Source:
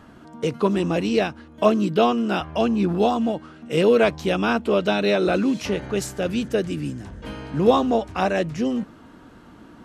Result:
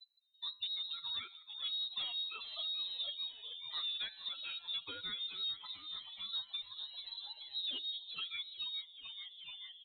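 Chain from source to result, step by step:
spectral dynamics exaggerated over time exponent 3
rotating-speaker cabinet horn 0.75 Hz, later 6.7 Hz, at 0:05.75
downward compressor 2 to 1, threshold −30 dBFS, peak gain reduction 7.5 dB
hum removal 175.4 Hz, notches 21
sample-and-hold tremolo
soft clipping −29 dBFS, distortion −15 dB
echo with shifted repeats 433 ms, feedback 64%, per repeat +100 Hz, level −15 dB
voice inversion scrambler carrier 4,000 Hz
multiband upward and downward compressor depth 70%
level −4 dB

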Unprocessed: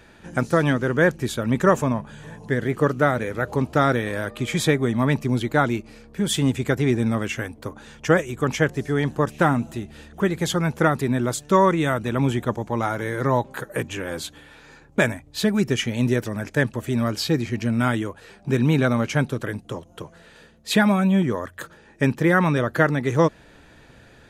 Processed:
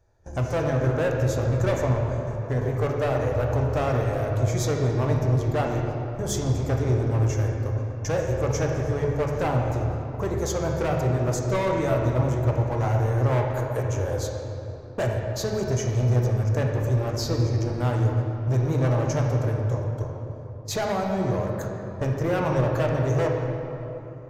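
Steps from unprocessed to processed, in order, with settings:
noise gate −39 dBFS, range −18 dB
drawn EQ curve 110 Hz 0 dB, 180 Hz −23 dB, 620 Hz −6 dB, 3,000 Hz −27 dB, 6,300 Hz −6 dB, 9,000 Hz −23 dB, 13,000 Hz −12 dB
in parallel at 0 dB: downward compressor, threshold −37 dBFS, peak gain reduction 15 dB
on the sum: hard clipping −26.5 dBFS, distortion −11 dB
convolution reverb RT60 3.4 s, pre-delay 9 ms, DRR 0 dB
level +4 dB

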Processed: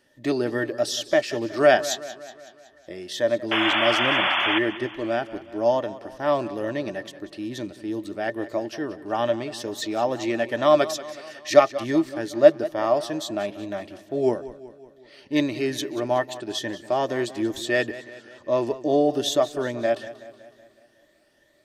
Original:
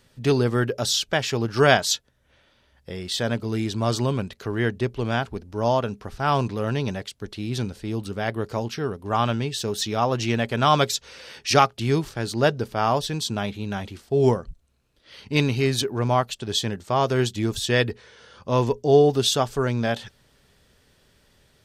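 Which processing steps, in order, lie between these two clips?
rippled gain that drifts along the octave scale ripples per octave 1.1, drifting +2.3 Hz, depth 6 dB
low-shelf EQ 230 Hz −11.5 dB
hollow resonant body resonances 320/590/1,800 Hz, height 17 dB, ringing for 55 ms
sound drawn into the spectrogram noise, 0:03.51–0:04.59, 550–3,500 Hz −16 dBFS
feedback echo with a swinging delay time 186 ms, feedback 56%, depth 68 cents, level −16 dB
level −6.5 dB

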